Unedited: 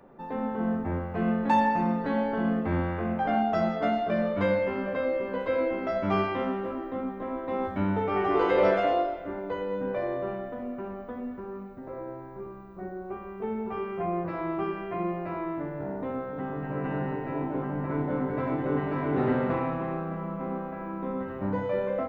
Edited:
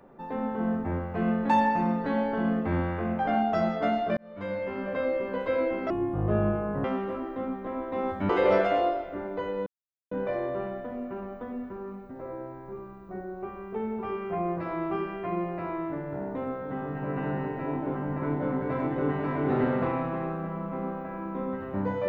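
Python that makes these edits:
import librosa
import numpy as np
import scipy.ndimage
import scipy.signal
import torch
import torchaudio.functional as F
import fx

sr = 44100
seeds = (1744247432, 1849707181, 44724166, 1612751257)

y = fx.edit(x, sr, fx.fade_in_span(start_s=4.17, length_s=0.84),
    fx.speed_span(start_s=5.9, length_s=0.5, speed=0.53),
    fx.cut(start_s=7.85, length_s=0.57),
    fx.insert_silence(at_s=9.79, length_s=0.45), tone=tone)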